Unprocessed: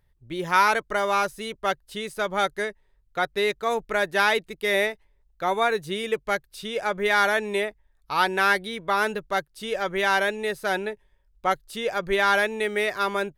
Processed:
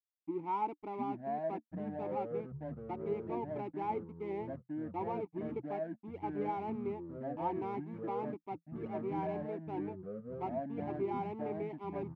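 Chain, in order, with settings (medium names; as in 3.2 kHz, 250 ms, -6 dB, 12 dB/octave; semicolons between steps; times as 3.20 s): FFT filter 640 Hz 0 dB, 3.8 kHz -30 dB, 10 kHz -18 dB; tempo 1.1×; hysteresis with a dead band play -32.5 dBFS; vowel filter u; ever faster or slower copies 613 ms, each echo -5 st, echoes 3; trim +4.5 dB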